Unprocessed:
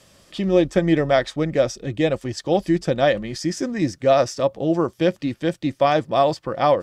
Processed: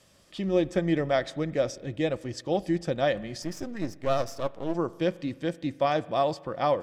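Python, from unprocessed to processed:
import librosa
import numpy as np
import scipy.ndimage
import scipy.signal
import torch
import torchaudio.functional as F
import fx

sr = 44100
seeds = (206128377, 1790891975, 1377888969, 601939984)

y = fx.halfwave_gain(x, sr, db=-12.0, at=(3.42, 4.75))
y = fx.rev_spring(y, sr, rt60_s=1.3, pass_ms=(41,), chirp_ms=60, drr_db=19.0)
y = y * librosa.db_to_amplitude(-7.5)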